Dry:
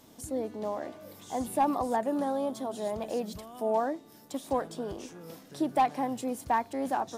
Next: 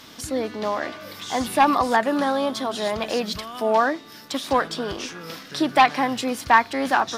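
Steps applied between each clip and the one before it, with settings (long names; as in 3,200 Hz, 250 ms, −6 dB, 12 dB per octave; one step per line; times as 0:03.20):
flat-topped bell 2,500 Hz +12 dB 2.6 octaves
level +7 dB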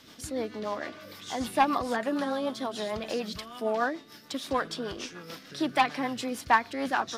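rotating-speaker cabinet horn 6.7 Hz
hard clipping −6 dBFS, distortion −35 dB
level −5 dB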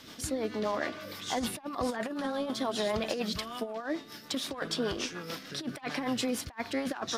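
compressor whose output falls as the input rises −32 dBFS, ratio −0.5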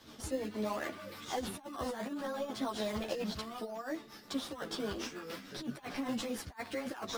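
in parallel at −5 dB: sample-and-hold swept by an LFO 13×, swing 100% 0.71 Hz
on the sum: string-ensemble chorus
level −5 dB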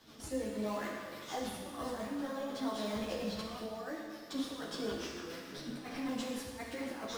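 dense smooth reverb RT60 1.7 s, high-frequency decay 0.95×, DRR −0.5 dB
level −4.5 dB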